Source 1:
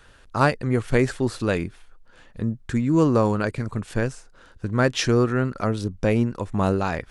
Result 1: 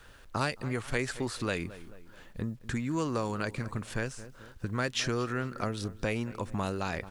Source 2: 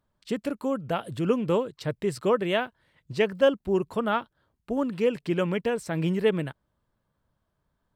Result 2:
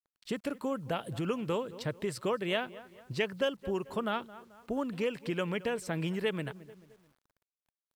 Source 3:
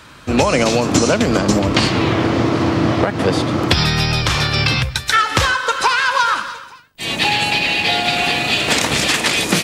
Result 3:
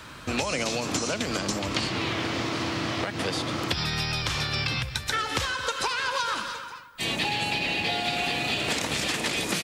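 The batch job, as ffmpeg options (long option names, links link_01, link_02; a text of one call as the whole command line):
ffmpeg -i in.wav -filter_complex "[0:a]asplit=2[link_01][link_02];[link_02]adelay=218,lowpass=frequency=4200:poles=1,volume=-21.5dB,asplit=2[link_03][link_04];[link_04]adelay=218,lowpass=frequency=4200:poles=1,volume=0.43,asplit=2[link_05][link_06];[link_06]adelay=218,lowpass=frequency=4200:poles=1,volume=0.43[link_07];[link_01][link_03][link_05][link_07]amix=inputs=4:normalize=0,acrossover=split=750|2100[link_08][link_09][link_10];[link_08]acompressor=threshold=-30dB:ratio=4[link_11];[link_09]acompressor=threshold=-35dB:ratio=4[link_12];[link_10]acompressor=threshold=-28dB:ratio=4[link_13];[link_11][link_12][link_13]amix=inputs=3:normalize=0,acrusher=bits=10:mix=0:aa=0.000001,volume=-2dB" out.wav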